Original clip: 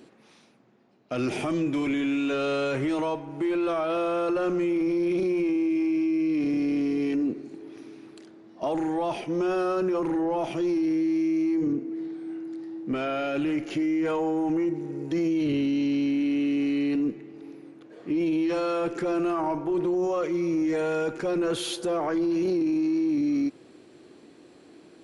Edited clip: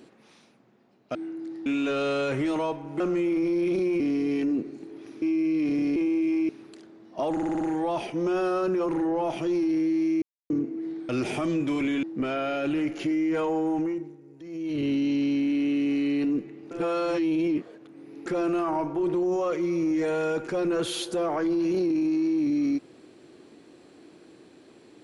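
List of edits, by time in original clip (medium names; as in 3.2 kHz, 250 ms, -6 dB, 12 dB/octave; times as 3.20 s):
1.15–2.09 s: swap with 12.23–12.74 s
3.43–4.44 s: delete
5.44–5.97 s: swap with 6.71–7.93 s
8.75 s: stutter 0.06 s, 6 plays
11.36–11.64 s: mute
14.44–15.63 s: dip -16.5 dB, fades 0.45 s
17.42–18.97 s: reverse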